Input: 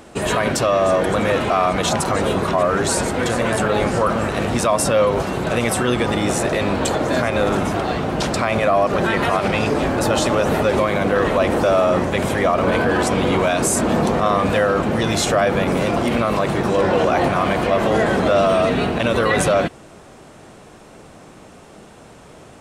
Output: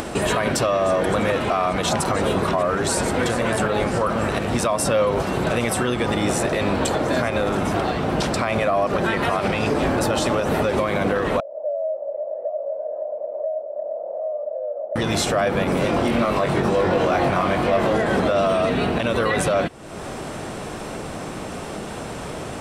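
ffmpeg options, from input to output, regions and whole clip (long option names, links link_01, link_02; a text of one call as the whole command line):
ffmpeg -i in.wav -filter_complex "[0:a]asettb=1/sr,asplit=3[link_01][link_02][link_03];[link_01]atrim=end=11.404[link_04];[link_02]atrim=start=11.4:end=14.96,asetpts=PTS-STARTPTS,afade=type=in:duration=0.004:curve=qsin,afade=type=out:start_time=3.556:duration=0.004:curve=qsin,asoftclip=type=hard:threshold=-21.5dB,asuperpass=centerf=600:order=4:qfactor=7[link_05];[link_03]atrim=start=14.956[link_06];[link_04][link_05]acrossfade=duration=0.004:curve1=hsin:curve2=qsin[link_07];[link_07][link_06]acrossfade=duration=0.004:curve1=qsin:curve2=hsin,asettb=1/sr,asplit=3[link_08][link_09][link_10];[link_08]atrim=end=15.814[link_11];[link_09]atrim=start=15.81:end=17.96,asetpts=PTS-STARTPTS,afade=type=in:duration=0.004:curve=qsin,afade=type=out:start_time=2.146:duration=0.004:curve=qsin,highshelf=frequency=9600:gain=-4.5,asoftclip=type=hard:threshold=-11.5dB,asplit=2[link_12][link_13];[link_13]adelay=22,volume=-4.5dB[link_14];[link_12][link_14]amix=inputs=2:normalize=0,atrim=end_sample=94815[link_15];[link_10]atrim=start=17.956[link_16];[link_11][link_15]acrossfade=duration=0.004:curve1=hsin:curve2=qsin[link_17];[link_17][link_16]acrossfade=duration=0.004:curve1=qsin:curve2=hsin,bandreject=frequency=6700:width=18,acompressor=mode=upward:threshold=-19dB:ratio=2.5,alimiter=limit=-11dB:level=0:latency=1:release=209" out.wav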